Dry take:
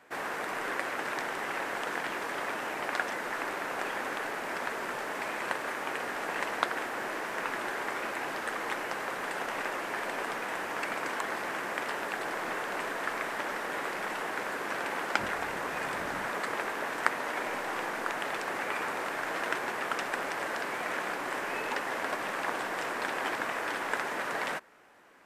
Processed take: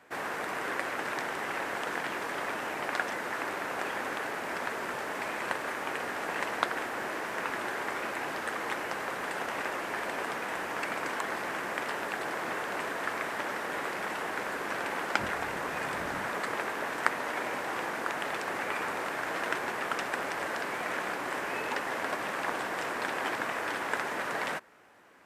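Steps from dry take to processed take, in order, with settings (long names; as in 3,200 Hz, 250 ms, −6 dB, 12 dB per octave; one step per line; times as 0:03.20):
high-pass filter 64 Hz
low-shelf EQ 89 Hz +10 dB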